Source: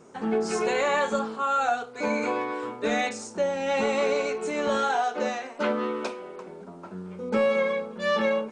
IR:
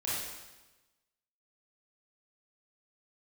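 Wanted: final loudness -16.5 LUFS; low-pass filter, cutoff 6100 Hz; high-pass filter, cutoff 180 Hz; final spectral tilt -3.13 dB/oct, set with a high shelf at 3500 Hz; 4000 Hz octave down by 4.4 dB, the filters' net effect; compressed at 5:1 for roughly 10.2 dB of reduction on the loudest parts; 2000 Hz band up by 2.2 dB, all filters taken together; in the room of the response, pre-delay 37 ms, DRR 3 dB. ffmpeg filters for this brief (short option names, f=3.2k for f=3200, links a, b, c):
-filter_complex "[0:a]highpass=180,lowpass=6.1k,equalizer=f=2k:t=o:g=5,highshelf=f=3.5k:g=-4,equalizer=f=4k:t=o:g=-5,acompressor=threshold=-31dB:ratio=5,asplit=2[a][b];[1:a]atrim=start_sample=2205,adelay=37[c];[b][c]afir=irnorm=-1:irlink=0,volume=-8.5dB[d];[a][d]amix=inputs=2:normalize=0,volume=16dB"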